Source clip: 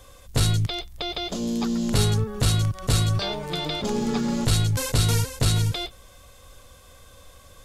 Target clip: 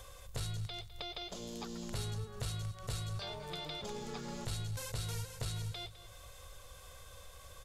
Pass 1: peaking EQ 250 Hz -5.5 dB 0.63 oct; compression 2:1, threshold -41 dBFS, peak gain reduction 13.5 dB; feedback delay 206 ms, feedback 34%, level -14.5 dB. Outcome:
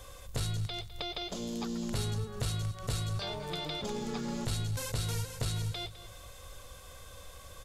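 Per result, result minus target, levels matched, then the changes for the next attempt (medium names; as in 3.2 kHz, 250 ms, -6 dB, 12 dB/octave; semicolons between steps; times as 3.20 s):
compression: peak gain reduction -5 dB; 250 Hz band +3.0 dB
change: compression 2:1, threshold -51.5 dBFS, peak gain reduction 18.5 dB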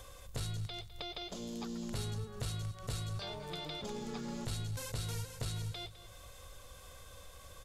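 250 Hz band +3.0 dB
change: peaking EQ 250 Hz -13.5 dB 0.63 oct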